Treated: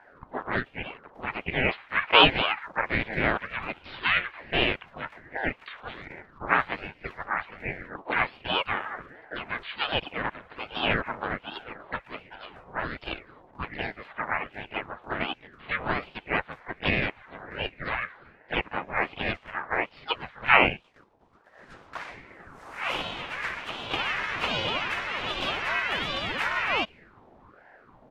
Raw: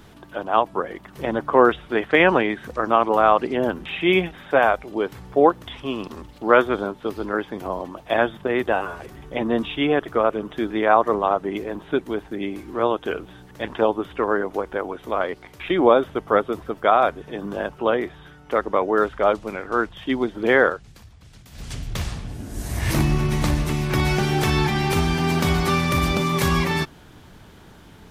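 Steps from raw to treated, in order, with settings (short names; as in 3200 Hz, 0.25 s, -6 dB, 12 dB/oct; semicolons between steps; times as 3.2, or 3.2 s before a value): auto-wah 490–1900 Hz, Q 4.5, up, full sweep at -21 dBFS; harmoniser -5 st -2 dB, +3 st -7 dB; ring modulator with a swept carrier 700 Hz, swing 75%, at 1.3 Hz; gain +6.5 dB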